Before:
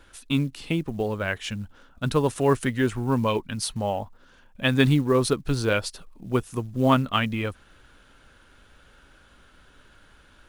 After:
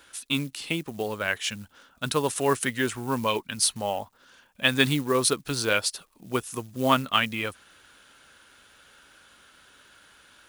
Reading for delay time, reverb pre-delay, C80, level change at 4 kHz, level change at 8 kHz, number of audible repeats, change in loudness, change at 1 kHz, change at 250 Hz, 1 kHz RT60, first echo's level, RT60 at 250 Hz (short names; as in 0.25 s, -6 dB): none, none, none, +4.5 dB, +7.5 dB, none, -1.0 dB, 0.0 dB, -5.0 dB, none, none, none